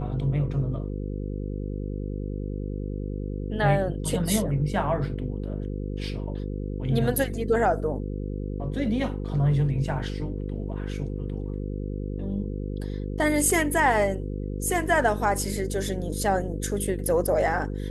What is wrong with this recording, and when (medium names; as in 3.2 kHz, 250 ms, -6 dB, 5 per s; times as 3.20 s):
buzz 50 Hz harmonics 10 -31 dBFS